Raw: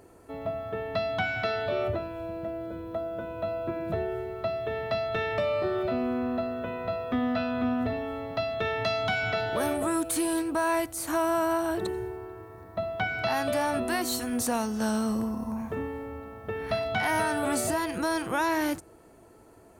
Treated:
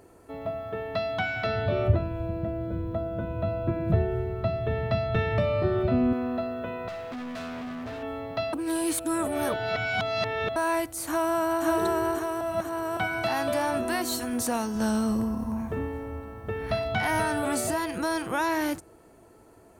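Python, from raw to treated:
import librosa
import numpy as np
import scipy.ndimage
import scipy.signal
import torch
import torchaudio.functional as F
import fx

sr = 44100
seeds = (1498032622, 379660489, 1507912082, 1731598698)

y = fx.bass_treble(x, sr, bass_db=14, treble_db=-4, at=(1.46, 6.13))
y = fx.clip_hard(y, sr, threshold_db=-34.5, at=(6.88, 8.03))
y = fx.echo_throw(y, sr, start_s=11.06, length_s=0.59, ms=540, feedback_pct=65, wet_db=-1.0)
y = fx.low_shelf(y, sr, hz=120.0, db=9.5, at=(14.75, 17.42))
y = fx.edit(y, sr, fx.reverse_span(start_s=8.53, length_s=2.03),
    fx.reverse_span(start_s=12.41, length_s=0.56), tone=tone)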